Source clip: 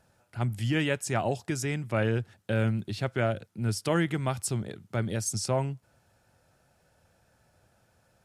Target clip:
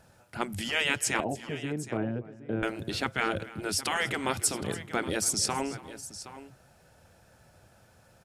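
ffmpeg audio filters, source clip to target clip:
-filter_complex "[0:a]asettb=1/sr,asplit=3[a][b][c];[a]atrim=end=1.204[d];[b]atrim=start=1.2:end=2.63,asetpts=PTS-STARTPTS,afade=t=in:d=0.004:c=qsin,afade=t=out:st=1.426:d=0.004:c=qsin,bandpass=f=380:t=q:w=1.8:csg=0[e];[c]atrim=start=2.626[f];[d][e]acrossfade=d=0.004:c1=hsin:c2=qsin[g];[g][f]acrossfade=d=0.004:c1=qsin:c2=hsin,afftfilt=real='re*lt(hypot(re,im),0.141)':imag='im*lt(hypot(re,im),0.141)':win_size=1024:overlap=0.75,aecho=1:1:287|769:0.119|0.188,volume=6.5dB"

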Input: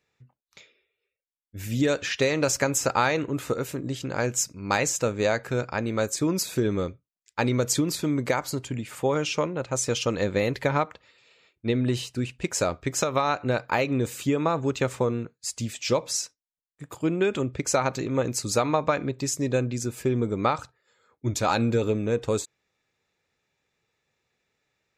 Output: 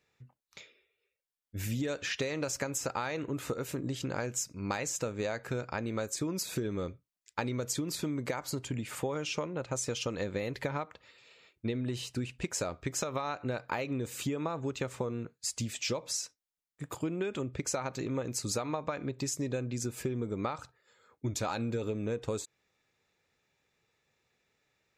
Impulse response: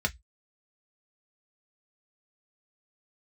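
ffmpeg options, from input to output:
-af "acompressor=threshold=-31dB:ratio=6"

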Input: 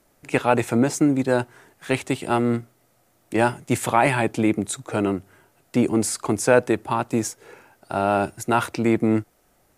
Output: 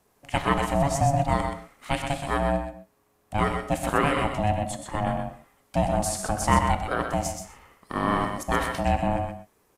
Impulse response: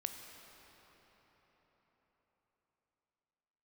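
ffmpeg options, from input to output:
-filter_complex "[1:a]atrim=start_sample=2205,afade=t=out:st=0.17:d=0.01,atrim=end_sample=7938,asetrate=37926,aresample=44100[a];[0:a][a]afir=irnorm=-1:irlink=0,aeval=exprs='val(0)*sin(2*PI*420*n/s)':c=same,asettb=1/sr,asplit=3[b][c][d];[b]atrim=end=2.584[e];[c]atrim=start=2.58:end=5.07,asetpts=PTS-STARTPTS,afade=t=in:d=0.004:c=qsin,afade=t=out:st=2.486:d=0.004:c=qsin,equalizer=f=8k:w=0.34:g=-4.5[f];[d]atrim=start=5.066[g];[e][f]acrossfade=d=0.004:c1=hsin:c2=qsin[h];[h][g]acrossfade=d=0.004:c1=qsin:c2=hsin,aecho=1:1:126:0.473"

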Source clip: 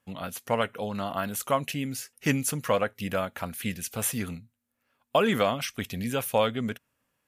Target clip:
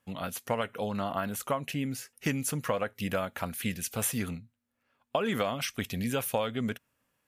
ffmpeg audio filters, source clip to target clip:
-filter_complex "[0:a]asettb=1/sr,asplit=3[a][b][c];[a]atrim=end=4.304[d];[b]atrim=start=4.3:end=5.25,asetpts=PTS-STARTPTS,afade=t=in:d=0.004:c=qsin,afade=t=out:st=0.946:d=0.004:c=qsin,highshelf=f=7.2k:g=-10[e];[c]atrim=start=5.246[f];[d][e]acrossfade=d=0.004:c1=hsin:c2=qsin[g];[g][f]acrossfade=d=0.004:c1=qsin:c2=hsin,acompressor=threshold=-25dB:ratio=10,asplit=3[h][i][j];[h]afade=t=out:st=0.91:d=0.02[k];[i]adynamicequalizer=threshold=0.00398:dfrequency=2600:dqfactor=0.7:tfrequency=2600:tqfactor=0.7:attack=5:release=100:ratio=0.375:range=2.5:mode=cutabove:tftype=highshelf,afade=t=in:st=0.91:d=0.02,afade=t=out:st=2.76:d=0.02[l];[j]afade=t=in:st=2.76:d=0.02[m];[k][l][m]amix=inputs=3:normalize=0"

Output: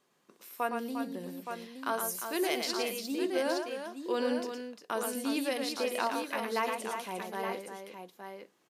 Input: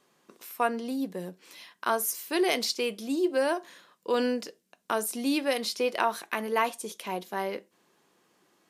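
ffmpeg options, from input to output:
-af "aecho=1:1:113|352|869:0.531|0.398|0.422,volume=-6dB"

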